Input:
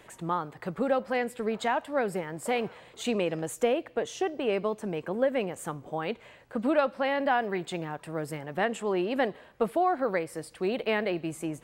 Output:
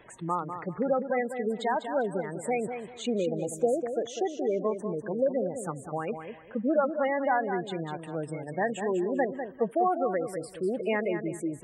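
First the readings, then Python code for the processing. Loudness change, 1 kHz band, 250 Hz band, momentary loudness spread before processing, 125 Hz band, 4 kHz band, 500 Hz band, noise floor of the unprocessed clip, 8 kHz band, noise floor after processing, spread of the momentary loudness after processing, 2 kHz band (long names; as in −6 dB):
0.0 dB, 0.0 dB, +0.5 dB, 9 LU, +0.5 dB, −6.0 dB, +0.5 dB, −55 dBFS, −1.0 dB, −47 dBFS, 9 LU, −2.5 dB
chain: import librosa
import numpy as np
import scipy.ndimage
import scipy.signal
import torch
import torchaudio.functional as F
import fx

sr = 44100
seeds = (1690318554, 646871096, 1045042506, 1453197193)

y = fx.spec_gate(x, sr, threshold_db=-15, keep='strong')
y = fx.echo_feedback(y, sr, ms=198, feedback_pct=24, wet_db=-8.5)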